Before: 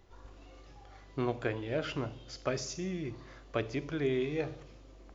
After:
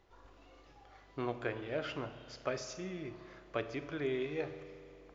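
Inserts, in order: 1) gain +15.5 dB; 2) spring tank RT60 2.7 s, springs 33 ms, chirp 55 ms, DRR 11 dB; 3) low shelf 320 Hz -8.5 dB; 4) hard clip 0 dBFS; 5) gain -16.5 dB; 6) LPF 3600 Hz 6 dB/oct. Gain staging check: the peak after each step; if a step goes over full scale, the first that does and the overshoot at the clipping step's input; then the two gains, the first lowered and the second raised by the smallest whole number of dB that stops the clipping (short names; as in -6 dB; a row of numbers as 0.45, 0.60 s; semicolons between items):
-2.0, -2.0, -3.0, -3.0, -19.5, -20.0 dBFS; no overload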